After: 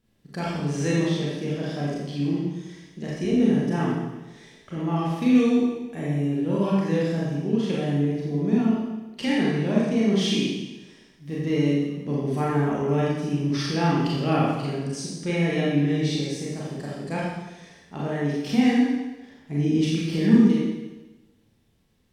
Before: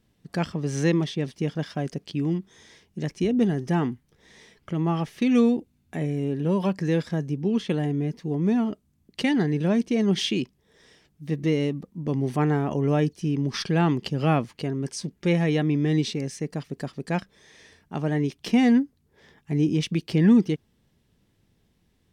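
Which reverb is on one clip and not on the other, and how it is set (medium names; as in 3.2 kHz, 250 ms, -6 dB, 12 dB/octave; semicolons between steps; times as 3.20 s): Schroeder reverb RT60 1.1 s, combs from 28 ms, DRR -6.5 dB; trim -6 dB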